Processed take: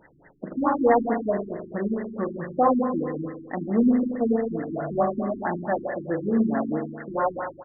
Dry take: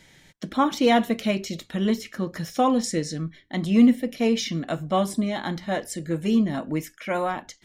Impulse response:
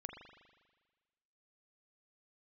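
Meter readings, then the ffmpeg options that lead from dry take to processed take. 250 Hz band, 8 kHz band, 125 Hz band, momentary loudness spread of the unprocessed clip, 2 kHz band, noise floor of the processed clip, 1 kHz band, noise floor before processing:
-2.0 dB, under -40 dB, -4.5 dB, 12 LU, -3.5 dB, -53 dBFS, +1.0 dB, -57 dBFS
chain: -filter_complex "[0:a]bass=f=250:g=-13,treble=f=4k:g=12,asplit=2[a][b];[b]acompressor=threshold=-35dB:ratio=5,volume=-0.5dB[c];[a][c]amix=inputs=2:normalize=0,asplit=2[d][e];[e]adelay=87.46,volume=-13dB,highshelf=f=4k:g=-1.97[f];[d][f]amix=inputs=2:normalize=0,aresample=11025,acrusher=bits=4:mode=log:mix=0:aa=0.000001,aresample=44100[g];[1:a]atrim=start_sample=2205[h];[g][h]afir=irnorm=-1:irlink=0,afftfilt=real='re*lt(b*sr/1024,350*pow(2100/350,0.5+0.5*sin(2*PI*4.6*pts/sr)))':imag='im*lt(b*sr/1024,350*pow(2100/350,0.5+0.5*sin(2*PI*4.6*pts/sr)))':win_size=1024:overlap=0.75,volume=6dB"

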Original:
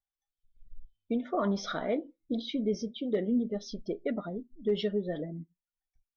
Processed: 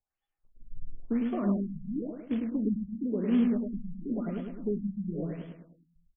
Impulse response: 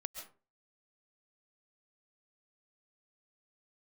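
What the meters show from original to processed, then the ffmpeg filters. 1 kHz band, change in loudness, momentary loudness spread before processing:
-6.5 dB, +1.0 dB, 8 LU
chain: -filter_complex "[0:a]highshelf=f=5.1k:g=10.5,acrossover=split=290[a][b];[b]acompressor=threshold=-52dB:ratio=2[c];[a][c]amix=inputs=2:normalize=0,acrusher=bits=4:mode=log:mix=0:aa=0.000001,aecho=1:1:104|208|312|416|520|624:0.596|0.292|0.143|0.0701|0.0343|0.0168,asplit=2[d][e];[1:a]atrim=start_sample=2205,asetrate=74970,aresample=44100[f];[e][f]afir=irnorm=-1:irlink=0,volume=3.5dB[g];[d][g]amix=inputs=2:normalize=0,afftfilt=real='re*lt(b*sr/1024,210*pow(3500/210,0.5+0.5*sin(2*PI*0.96*pts/sr)))':imag='im*lt(b*sr/1024,210*pow(3500/210,0.5+0.5*sin(2*PI*0.96*pts/sr)))':win_size=1024:overlap=0.75"

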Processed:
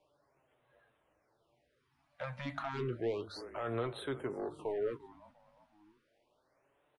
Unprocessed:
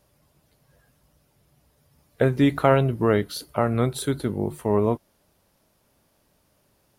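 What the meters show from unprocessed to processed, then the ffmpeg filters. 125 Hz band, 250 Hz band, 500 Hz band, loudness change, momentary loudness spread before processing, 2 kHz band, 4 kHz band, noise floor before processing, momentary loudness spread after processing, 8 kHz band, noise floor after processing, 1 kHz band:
-20.0 dB, -19.5 dB, -14.5 dB, -16.0 dB, 8 LU, -14.0 dB, -13.5 dB, -66 dBFS, 8 LU, under -20 dB, -77 dBFS, -15.5 dB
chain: -filter_complex "[0:a]equalizer=f=220:t=o:w=0.55:g=-8.5,alimiter=limit=-17dB:level=0:latency=1:release=32,aresample=22050,aresample=44100,acrossover=split=260 3400:gain=0.2 1 0.126[a][b][c];[a][b][c]amix=inputs=3:normalize=0,asplit=4[d][e][f][g];[e]adelay=348,afreqshift=-33,volume=-19dB[h];[f]adelay=696,afreqshift=-66,volume=-27dB[i];[g]adelay=1044,afreqshift=-99,volume=-34.9dB[j];[d][h][i][j]amix=inputs=4:normalize=0,asoftclip=type=tanh:threshold=-25.5dB,flanger=delay=6.5:depth=3.1:regen=52:speed=0.43:shape=triangular,bandreject=f=50:t=h:w=6,bandreject=f=100:t=h:w=6,bandreject=f=150:t=h:w=6,afftfilt=real='re*(1-between(b*sr/1024,350*pow(6000/350,0.5+0.5*sin(2*PI*0.32*pts/sr))/1.41,350*pow(6000/350,0.5+0.5*sin(2*PI*0.32*pts/sr))*1.41))':imag='im*(1-between(b*sr/1024,350*pow(6000/350,0.5+0.5*sin(2*PI*0.32*pts/sr))/1.41,350*pow(6000/350,0.5+0.5*sin(2*PI*0.32*pts/sr))*1.41))':win_size=1024:overlap=0.75"

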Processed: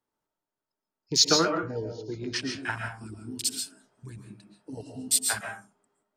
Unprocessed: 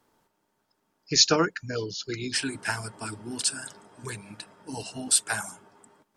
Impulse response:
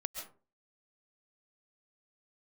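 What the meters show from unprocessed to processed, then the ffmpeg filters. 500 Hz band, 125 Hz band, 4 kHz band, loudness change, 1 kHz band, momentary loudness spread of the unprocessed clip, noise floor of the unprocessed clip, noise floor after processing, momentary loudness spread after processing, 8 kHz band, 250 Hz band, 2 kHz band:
-0.5 dB, -1.0 dB, -0.5 dB, -0.5 dB, -0.5 dB, 19 LU, -75 dBFS, under -85 dBFS, 24 LU, -1.0 dB, -0.5 dB, -2.0 dB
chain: -filter_complex "[0:a]afwtdn=0.0282[a];[1:a]atrim=start_sample=2205,afade=t=out:st=0.34:d=0.01,atrim=end_sample=15435[b];[a][b]afir=irnorm=-1:irlink=0"

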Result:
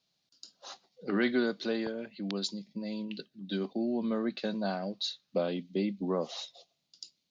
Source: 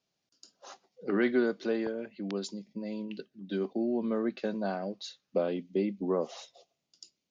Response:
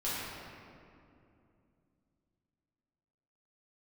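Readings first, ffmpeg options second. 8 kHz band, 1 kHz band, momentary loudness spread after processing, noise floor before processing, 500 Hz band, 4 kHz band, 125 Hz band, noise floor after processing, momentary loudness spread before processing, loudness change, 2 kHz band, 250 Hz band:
n/a, 0.0 dB, 18 LU, -84 dBFS, -2.5 dB, +8.0 dB, +1.5 dB, -80 dBFS, 14 LU, -1.0 dB, +0.5 dB, -0.5 dB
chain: -af "equalizer=f=160:t=o:w=0.67:g=3,equalizer=f=400:t=o:w=0.67:g=-4,equalizer=f=4k:t=o:w=0.67:g=10"

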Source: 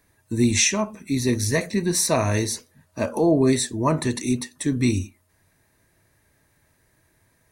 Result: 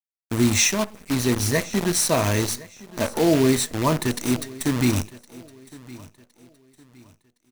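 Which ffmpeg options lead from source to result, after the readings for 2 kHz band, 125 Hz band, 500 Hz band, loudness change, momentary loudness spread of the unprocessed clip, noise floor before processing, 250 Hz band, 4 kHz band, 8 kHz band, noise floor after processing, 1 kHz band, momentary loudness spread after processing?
+1.5 dB, 0.0 dB, 0.0 dB, +0.5 dB, 10 LU, -65 dBFS, 0.0 dB, +1.5 dB, +0.5 dB, -73 dBFS, +1.0 dB, 12 LU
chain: -filter_complex "[0:a]acrusher=bits=5:dc=4:mix=0:aa=0.000001,asplit=2[a][b];[b]aecho=0:1:1063|2126|3189:0.0944|0.0321|0.0109[c];[a][c]amix=inputs=2:normalize=0"

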